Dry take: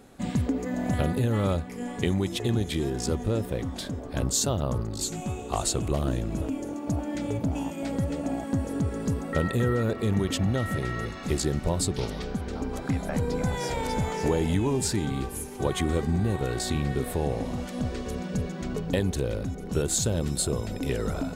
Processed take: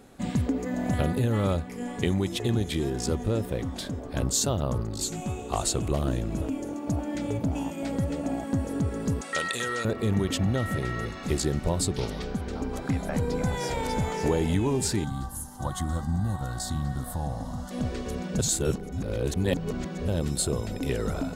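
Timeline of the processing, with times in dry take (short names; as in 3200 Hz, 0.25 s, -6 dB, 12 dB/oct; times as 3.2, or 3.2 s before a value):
9.21–9.85 weighting filter ITU-R 468
15.04–17.71 fixed phaser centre 1000 Hz, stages 4
18.39–20.08 reverse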